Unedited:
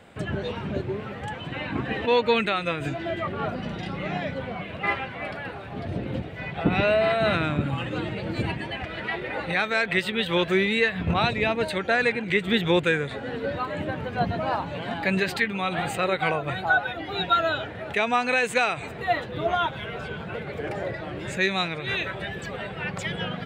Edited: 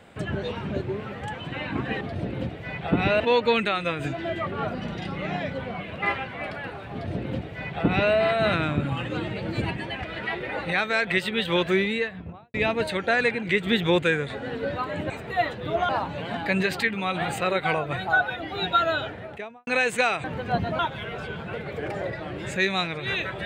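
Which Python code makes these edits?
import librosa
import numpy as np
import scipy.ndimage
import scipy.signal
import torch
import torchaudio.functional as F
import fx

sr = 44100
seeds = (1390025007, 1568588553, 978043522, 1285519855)

y = fx.studio_fade_out(x, sr, start_s=10.5, length_s=0.85)
y = fx.studio_fade_out(y, sr, start_s=17.61, length_s=0.63)
y = fx.edit(y, sr, fx.duplicate(start_s=5.74, length_s=1.19, to_s=2.01),
    fx.swap(start_s=13.91, length_s=0.55, other_s=18.81, other_length_s=0.79), tone=tone)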